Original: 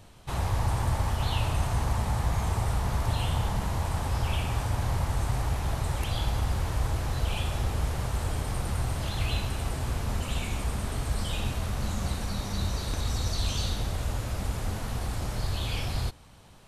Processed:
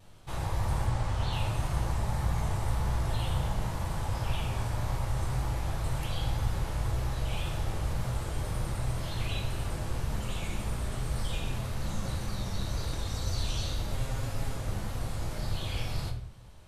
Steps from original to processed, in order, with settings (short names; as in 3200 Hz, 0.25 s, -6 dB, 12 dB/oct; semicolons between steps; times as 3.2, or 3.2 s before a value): 0.87–1.33 LPF 8400 Hz 12 dB/oct; 13.9–14.54 comb 7.4 ms, depth 64%; vibrato 1.9 Hz 50 cents; shoebox room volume 92 m³, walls mixed, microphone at 0.68 m; gain -6 dB